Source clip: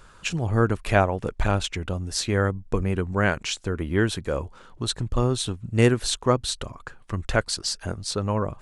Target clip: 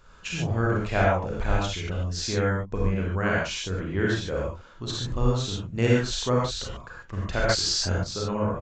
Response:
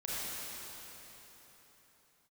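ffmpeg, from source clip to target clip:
-filter_complex "[1:a]atrim=start_sample=2205,atrim=end_sample=6615[link_01];[0:a][link_01]afir=irnorm=-1:irlink=0,asettb=1/sr,asplit=3[link_02][link_03][link_04];[link_02]atrim=end=7.494[link_05];[link_03]atrim=start=7.49:end=8.04,asetpts=PTS-STARTPTS,afade=type=in:duration=0.004:curve=qsin,afade=type=out:start_time=0.546:duration=0.004:curve=qsin,acontrast=65[link_06];[link_04]atrim=start=8.036[link_07];[link_05][link_06]acrossfade=duration=0.004:curve1=hsin:curve2=qsin[link_08];[link_08][link_07]acrossfade=duration=0.004:curve1=qsin:curve2=hsin,aresample=16000,aresample=44100,volume=-2.5dB"

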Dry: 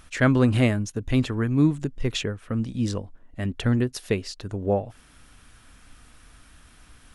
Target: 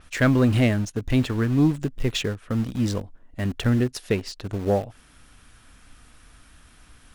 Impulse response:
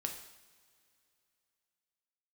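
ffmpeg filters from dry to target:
-filter_complex "[0:a]asplit=2[link_01][link_02];[link_02]acrusher=bits=4:mix=0:aa=0.000001,volume=-11dB[link_03];[link_01][link_03]amix=inputs=2:normalize=0,asoftclip=type=tanh:threshold=-10dB,adynamicequalizer=threshold=0.00447:dfrequency=6100:dqfactor=0.7:tfrequency=6100:tqfactor=0.7:attack=5:release=100:ratio=0.375:range=2:mode=cutabove:tftype=highshelf"

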